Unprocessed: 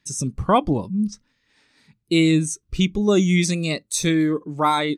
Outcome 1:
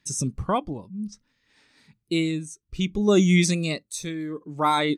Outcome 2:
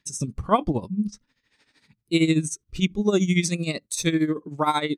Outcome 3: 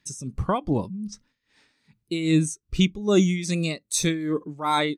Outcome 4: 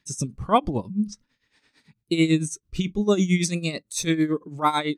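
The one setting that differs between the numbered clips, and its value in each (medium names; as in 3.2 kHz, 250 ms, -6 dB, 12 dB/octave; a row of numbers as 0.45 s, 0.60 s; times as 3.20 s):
tremolo, rate: 0.6 Hz, 13 Hz, 2.5 Hz, 9 Hz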